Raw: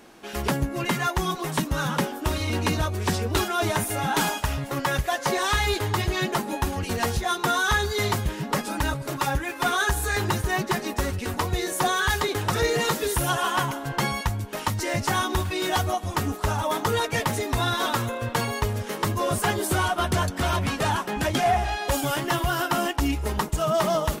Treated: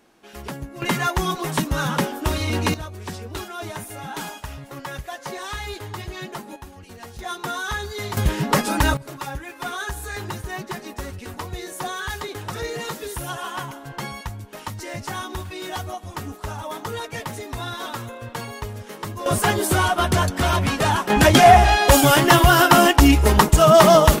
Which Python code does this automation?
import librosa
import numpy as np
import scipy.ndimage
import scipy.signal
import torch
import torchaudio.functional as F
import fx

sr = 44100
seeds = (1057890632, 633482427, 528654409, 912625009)

y = fx.gain(x, sr, db=fx.steps((0.0, -8.0), (0.82, 3.0), (2.74, -8.0), (6.56, -14.5), (7.19, -5.0), (8.17, 7.0), (8.97, -6.0), (19.26, 4.5), (21.1, 11.5)))